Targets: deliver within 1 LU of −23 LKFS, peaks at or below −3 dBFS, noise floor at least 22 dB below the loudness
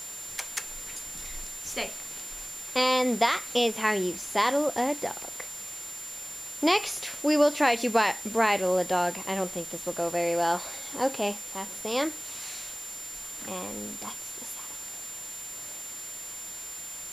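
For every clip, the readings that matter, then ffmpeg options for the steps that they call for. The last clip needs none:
interfering tone 7,200 Hz; level of the tone −38 dBFS; background noise floor −40 dBFS; target noise floor −51 dBFS; integrated loudness −28.5 LKFS; sample peak −9.5 dBFS; target loudness −23.0 LKFS
→ -af "bandreject=frequency=7200:width=30"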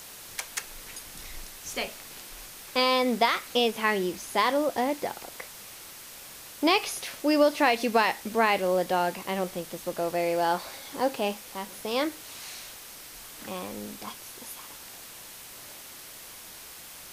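interfering tone none found; background noise floor −45 dBFS; target noise floor −50 dBFS
→ -af "afftdn=noise_reduction=6:noise_floor=-45"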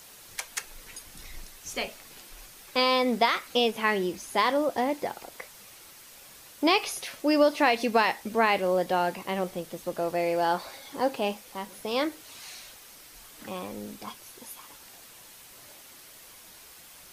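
background noise floor −50 dBFS; integrated loudness −27.5 LKFS; sample peak −10.0 dBFS; target loudness −23.0 LKFS
→ -af "volume=4.5dB"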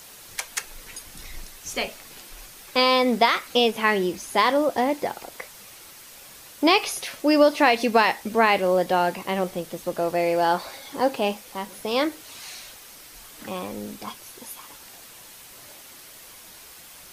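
integrated loudness −23.0 LKFS; sample peak −5.5 dBFS; background noise floor −46 dBFS

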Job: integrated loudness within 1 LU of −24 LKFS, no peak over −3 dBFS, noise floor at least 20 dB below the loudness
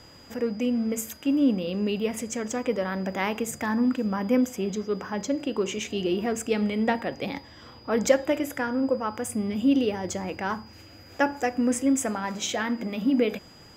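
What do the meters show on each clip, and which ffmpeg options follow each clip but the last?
interfering tone 4,900 Hz; level of the tone −52 dBFS; integrated loudness −27.0 LKFS; sample peak −6.5 dBFS; target loudness −24.0 LKFS
→ -af "bandreject=frequency=4900:width=30"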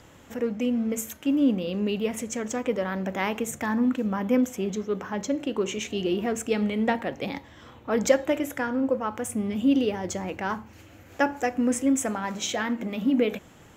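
interfering tone none found; integrated loudness −27.0 LKFS; sample peak −6.5 dBFS; target loudness −24.0 LKFS
→ -af "volume=3dB"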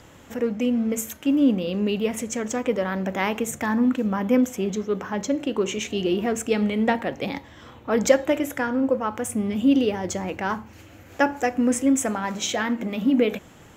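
integrated loudness −24.0 LKFS; sample peak −3.5 dBFS; background noise floor −48 dBFS

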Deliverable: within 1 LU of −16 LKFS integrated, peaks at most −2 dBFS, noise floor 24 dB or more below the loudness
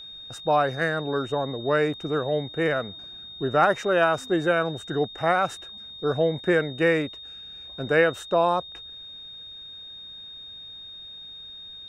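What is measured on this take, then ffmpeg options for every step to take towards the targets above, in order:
interfering tone 3,700 Hz; level of the tone −39 dBFS; integrated loudness −24.5 LKFS; sample peak −7.0 dBFS; target loudness −16.0 LKFS
→ -af "bandreject=frequency=3700:width=30"
-af "volume=8.5dB,alimiter=limit=-2dB:level=0:latency=1"

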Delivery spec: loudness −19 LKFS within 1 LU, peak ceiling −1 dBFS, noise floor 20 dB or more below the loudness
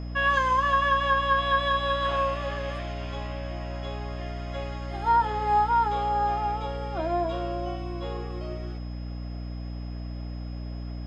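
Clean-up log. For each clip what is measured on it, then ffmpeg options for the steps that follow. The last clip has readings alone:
mains hum 60 Hz; hum harmonics up to 300 Hz; level of the hum −32 dBFS; interfering tone 5,100 Hz; level of the tone −54 dBFS; integrated loudness −27.5 LKFS; sample peak −12.5 dBFS; target loudness −19.0 LKFS
→ -af "bandreject=frequency=60:width_type=h:width=6,bandreject=frequency=120:width_type=h:width=6,bandreject=frequency=180:width_type=h:width=6,bandreject=frequency=240:width_type=h:width=6,bandreject=frequency=300:width_type=h:width=6"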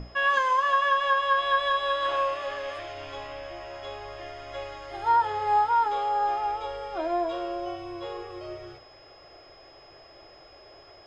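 mains hum none found; interfering tone 5,100 Hz; level of the tone −54 dBFS
→ -af "bandreject=frequency=5100:width=30"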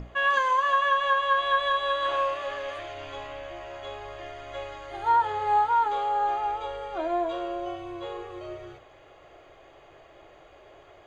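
interfering tone none found; integrated loudness −26.0 LKFS; sample peak −12.5 dBFS; target loudness −19.0 LKFS
→ -af "volume=7dB"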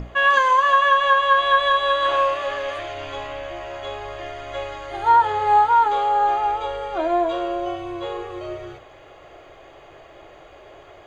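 integrated loudness −19.0 LKFS; sample peak −5.5 dBFS; background noise floor −46 dBFS

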